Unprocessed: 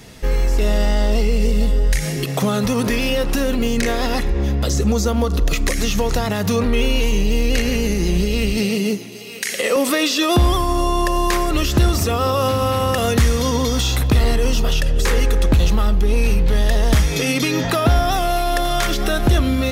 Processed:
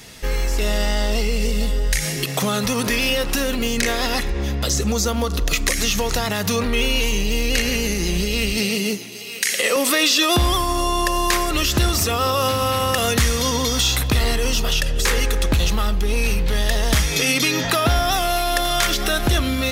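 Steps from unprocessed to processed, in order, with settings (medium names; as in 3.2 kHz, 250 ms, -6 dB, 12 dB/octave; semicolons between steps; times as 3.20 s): tilt shelf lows -4.5 dB, about 1.1 kHz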